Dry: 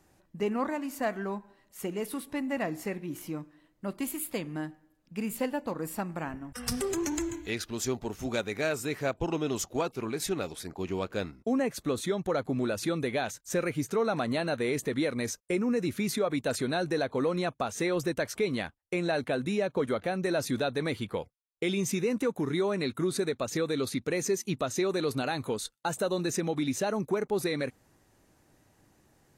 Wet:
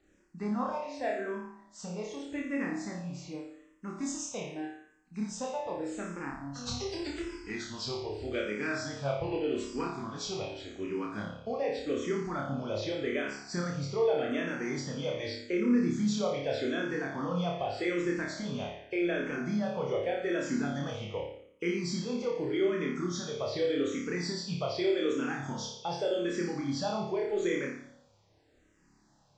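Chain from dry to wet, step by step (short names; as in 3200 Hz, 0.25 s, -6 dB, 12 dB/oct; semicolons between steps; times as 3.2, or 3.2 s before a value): nonlinear frequency compression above 2500 Hz 1.5:1; flutter echo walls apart 4.9 m, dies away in 0.73 s; endless phaser -0.84 Hz; gain -3 dB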